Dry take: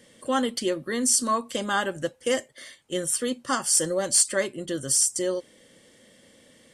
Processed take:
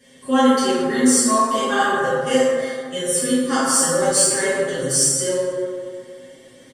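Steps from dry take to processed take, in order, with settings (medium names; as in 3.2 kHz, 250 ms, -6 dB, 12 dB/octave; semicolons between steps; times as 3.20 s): comb 7.5 ms, depth 97%; in parallel at -8.5 dB: saturation -15 dBFS, distortion -14 dB; on the sum: plate-style reverb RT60 2.1 s, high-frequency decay 0.4×, DRR -9.5 dB; trim -8 dB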